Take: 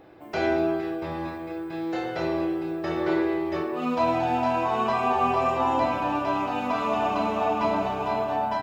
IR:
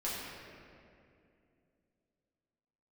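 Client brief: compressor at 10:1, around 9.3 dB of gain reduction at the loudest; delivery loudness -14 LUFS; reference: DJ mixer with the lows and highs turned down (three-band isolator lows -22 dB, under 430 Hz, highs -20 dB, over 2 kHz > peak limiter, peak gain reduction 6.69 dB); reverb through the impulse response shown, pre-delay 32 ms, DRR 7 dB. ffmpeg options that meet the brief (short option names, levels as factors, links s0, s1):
-filter_complex "[0:a]acompressor=threshold=0.0355:ratio=10,asplit=2[s0][s1];[1:a]atrim=start_sample=2205,adelay=32[s2];[s1][s2]afir=irnorm=-1:irlink=0,volume=0.266[s3];[s0][s3]amix=inputs=2:normalize=0,acrossover=split=430 2000:gain=0.0794 1 0.1[s4][s5][s6];[s4][s5][s6]amix=inputs=3:normalize=0,volume=15.8,alimiter=limit=0.562:level=0:latency=1"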